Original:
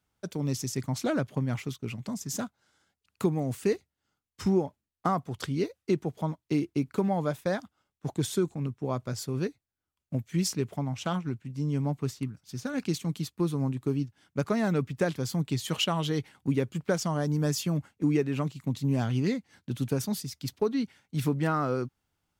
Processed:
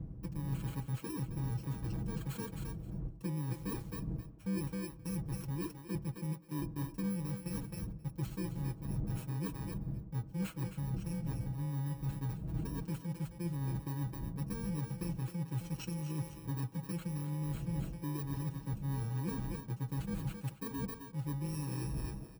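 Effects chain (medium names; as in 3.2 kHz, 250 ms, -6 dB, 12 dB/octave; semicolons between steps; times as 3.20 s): bit-reversed sample order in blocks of 64 samples; wind noise 150 Hz -38 dBFS; high-pass 47 Hz; bass shelf 200 Hz +11.5 dB; comb 6.2 ms, depth 77%; thinning echo 265 ms, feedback 16%, high-pass 390 Hz, level -8 dB; reverse; compression 6:1, threshold -31 dBFS, peak gain reduction 18 dB; reverse; treble shelf 2.3 kHz -9.5 dB; on a send at -16.5 dB: reverberation RT60 0.70 s, pre-delay 3 ms; on the sum: trim -3.5 dB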